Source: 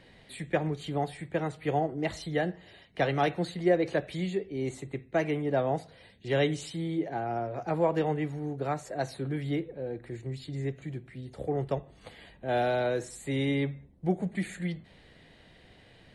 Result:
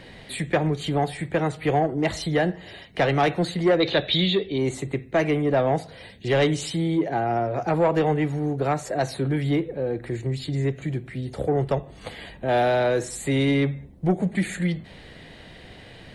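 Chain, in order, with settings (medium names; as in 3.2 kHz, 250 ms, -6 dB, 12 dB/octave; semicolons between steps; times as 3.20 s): in parallel at -3 dB: compression, threshold -37 dBFS, peak gain reduction 17.5 dB; on the sum: saturation -19.5 dBFS, distortion -16 dB; 3.80–4.58 s: resonant low-pass 3.7 kHz, resonance Q 9.6; trim +7 dB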